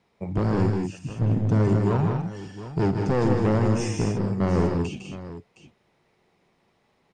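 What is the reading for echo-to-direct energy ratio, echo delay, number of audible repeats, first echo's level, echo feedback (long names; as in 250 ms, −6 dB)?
−2.5 dB, 56 ms, 4, −14.0 dB, repeats not evenly spaced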